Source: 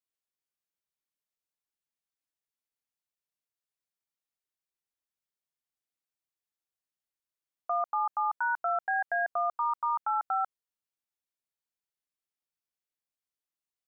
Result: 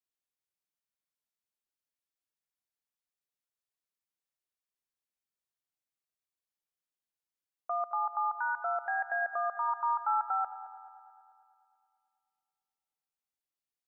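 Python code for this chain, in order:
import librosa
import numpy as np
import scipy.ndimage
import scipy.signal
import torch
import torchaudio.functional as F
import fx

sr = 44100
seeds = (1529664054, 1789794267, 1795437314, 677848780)

p1 = fx.comb(x, sr, ms=2.2, depth=0.58, at=(9.68, 10.44))
p2 = p1 + fx.echo_heads(p1, sr, ms=109, heads='first and second', feedback_pct=62, wet_db=-17, dry=0)
y = p2 * 10.0 ** (-3.5 / 20.0)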